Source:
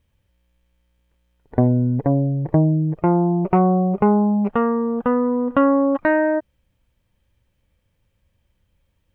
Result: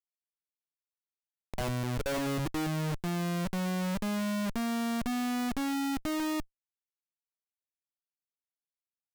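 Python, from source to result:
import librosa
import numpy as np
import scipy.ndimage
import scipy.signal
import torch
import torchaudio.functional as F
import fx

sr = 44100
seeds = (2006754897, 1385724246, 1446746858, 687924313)

y = fx.filter_sweep_bandpass(x, sr, from_hz=2200.0, to_hz=220.0, start_s=0.88, end_s=2.8, q=2.9)
y = fx.high_shelf(y, sr, hz=2500.0, db=-7.5)
y = fx.schmitt(y, sr, flips_db=-36.0)
y = F.gain(torch.from_numpy(y), -5.0).numpy()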